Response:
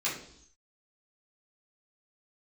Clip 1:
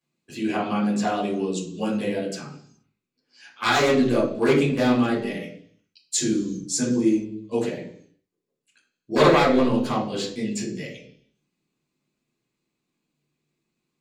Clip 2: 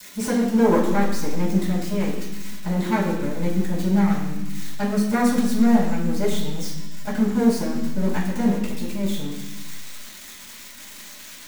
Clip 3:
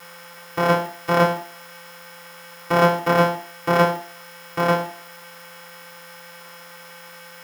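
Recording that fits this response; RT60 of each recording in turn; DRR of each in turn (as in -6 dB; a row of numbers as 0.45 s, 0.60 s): 1; 0.65 s, 1.1 s, 0.45 s; -8.0 dB, -12.0 dB, -4.5 dB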